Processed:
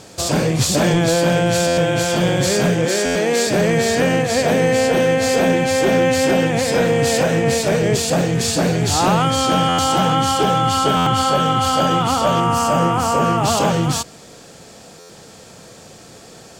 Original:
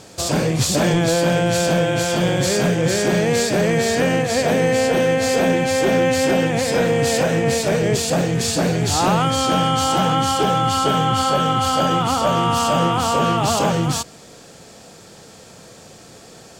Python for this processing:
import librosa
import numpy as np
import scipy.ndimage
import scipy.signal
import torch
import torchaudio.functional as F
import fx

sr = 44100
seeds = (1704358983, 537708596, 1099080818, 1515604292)

y = fx.highpass(x, sr, hz=220.0, slope=24, at=(2.85, 3.47))
y = fx.peak_eq(y, sr, hz=3600.0, db=-11.0, octaves=0.52, at=(12.4, 13.45))
y = fx.buffer_glitch(y, sr, at_s=(1.67, 3.05, 9.68, 10.96, 14.99), block=512, repeats=8)
y = y * librosa.db_to_amplitude(1.5)